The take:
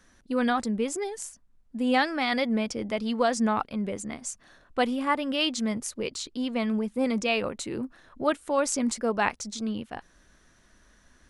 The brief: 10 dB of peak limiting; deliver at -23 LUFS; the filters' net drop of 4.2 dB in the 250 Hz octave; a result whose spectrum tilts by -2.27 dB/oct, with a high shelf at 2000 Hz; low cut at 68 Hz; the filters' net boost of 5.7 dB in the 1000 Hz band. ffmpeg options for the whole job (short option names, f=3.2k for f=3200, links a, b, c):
-af "highpass=68,equalizer=f=250:t=o:g=-5,equalizer=f=1k:t=o:g=7,highshelf=f=2k:g=4,volume=5.5dB,alimiter=limit=-9dB:level=0:latency=1"